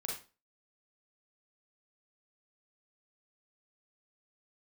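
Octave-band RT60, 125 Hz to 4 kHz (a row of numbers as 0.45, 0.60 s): 0.35, 0.35, 0.35, 0.30, 0.30, 0.30 s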